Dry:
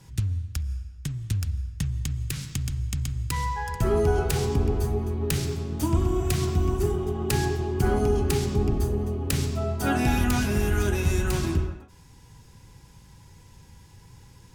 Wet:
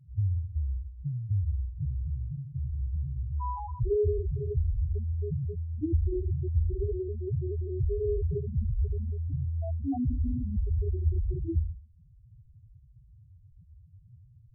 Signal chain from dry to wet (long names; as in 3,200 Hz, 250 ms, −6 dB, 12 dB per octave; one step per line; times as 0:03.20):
spectral peaks only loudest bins 2